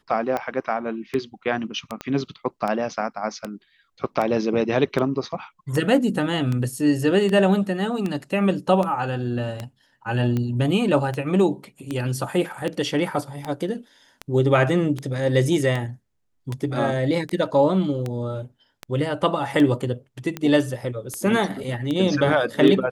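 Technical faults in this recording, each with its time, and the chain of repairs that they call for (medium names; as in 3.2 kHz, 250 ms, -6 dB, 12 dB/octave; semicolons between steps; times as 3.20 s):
tick 78 rpm -14 dBFS
2.01 s: pop -16 dBFS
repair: de-click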